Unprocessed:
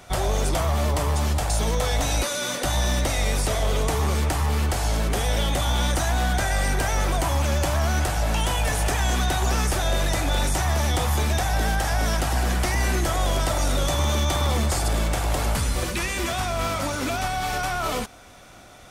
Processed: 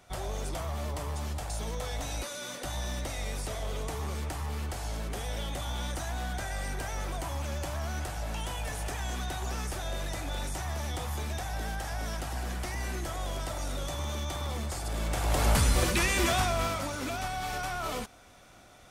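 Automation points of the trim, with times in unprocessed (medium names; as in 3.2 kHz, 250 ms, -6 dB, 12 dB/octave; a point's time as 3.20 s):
14.84 s -12 dB
15.52 s 0 dB
16.36 s 0 dB
16.87 s -8 dB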